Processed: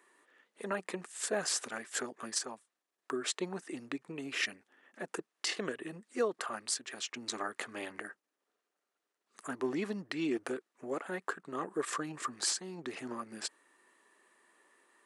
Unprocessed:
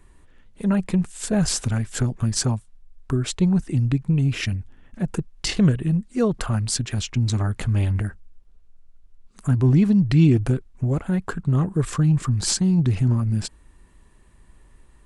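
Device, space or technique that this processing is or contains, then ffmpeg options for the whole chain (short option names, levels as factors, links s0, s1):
laptop speaker: -af "highpass=f=340:w=0.5412,highpass=f=340:w=1.3066,equalizer=f=1200:t=o:w=0.23:g=5,equalizer=f=1800:t=o:w=0.35:g=6,alimiter=limit=0.168:level=0:latency=1:release=494,volume=0.531"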